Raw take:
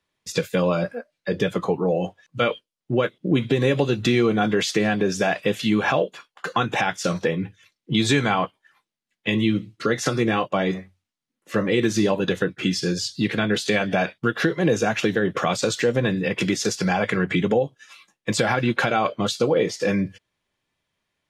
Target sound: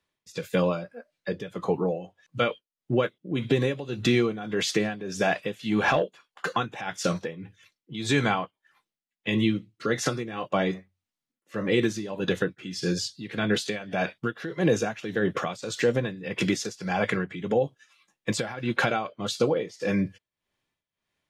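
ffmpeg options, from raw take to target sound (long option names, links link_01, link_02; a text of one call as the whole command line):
ffmpeg -i in.wav -filter_complex "[0:a]tremolo=f=1.7:d=0.8,asettb=1/sr,asplit=3[link_01][link_02][link_03];[link_01]atrim=end=5.614[link_04];[link_02]atrim=start=5.61:end=6.56,asetpts=PTS-STARTPTS,afade=type=in:duration=0.004:curve=qsin,afade=type=out:start_time=0.946:duration=0.004:curve=qsin,aeval=exprs='0.376*(cos(1*acos(clip(val(0)/0.376,-1,1)))-cos(1*PI/2))+0.0237*(cos(5*acos(clip(val(0)/0.376,-1,1)))-cos(5*PI/2))':channel_layout=same[link_05];[link_03]atrim=start=6.556[link_06];[link_04][link_05]acrossfade=duration=0.004:curve1=hsin:curve2=qsin[link_07];[link_07][link_06]acrossfade=duration=0.004:curve1=qsin:curve2=hsin,volume=-2dB" out.wav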